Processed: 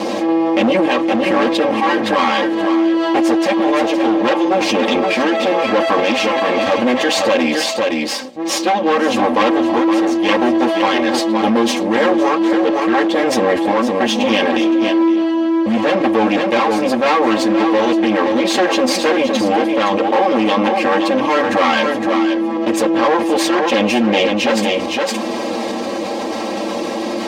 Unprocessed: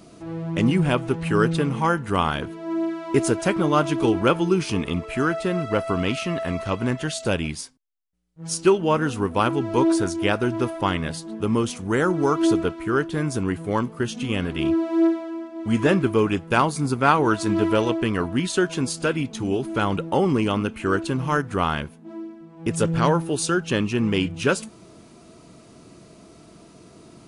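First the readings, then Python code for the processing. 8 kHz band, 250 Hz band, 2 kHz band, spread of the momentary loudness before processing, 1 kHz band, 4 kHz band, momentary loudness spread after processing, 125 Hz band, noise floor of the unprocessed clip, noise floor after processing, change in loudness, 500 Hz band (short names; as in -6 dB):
+5.5 dB, +8.0 dB, +9.0 dB, 8 LU, +9.5 dB, +11.5 dB, 4 LU, -8.0 dB, -49 dBFS, -22 dBFS, +7.5 dB, +8.5 dB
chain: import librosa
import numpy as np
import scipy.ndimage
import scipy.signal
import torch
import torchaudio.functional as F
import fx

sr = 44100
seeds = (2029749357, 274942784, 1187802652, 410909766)

p1 = fx.lower_of_two(x, sr, delay_ms=8.9)
p2 = fx.peak_eq(p1, sr, hz=650.0, db=5.0, octaves=1.1)
p3 = fx.notch(p2, sr, hz=1400.0, q=5.1)
p4 = p3 + 0.79 * np.pad(p3, (int(3.7 * sr / 1000.0), 0))[:len(p3)]
p5 = fx.rider(p4, sr, range_db=10, speed_s=0.5)
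p6 = p4 + (p5 * 10.0 ** (3.0 / 20.0))
p7 = np.clip(10.0 ** (7.5 / 20.0) * p6, -1.0, 1.0) / 10.0 ** (7.5 / 20.0)
p8 = fx.tremolo_random(p7, sr, seeds[0], hz=3.5, depth_pct=55)
p9 = p8 + fx.echo_single(p8, sr, ms=515, db=-9.0, dry=0)
p10 = (np.kron(scipy.signal.resample_poly(p9, 1, 2), np.eye(2)[0]) * 2)[:len(p9)]
p11 = fx.bandpass_edges(p10, sr, low_hz=270.0, high_hz=4600.0)
p12 = fx.env_flatten(p11, sr, amount_pct=70)
y = p12 * 10.0 ** (-1.5 / 20.0)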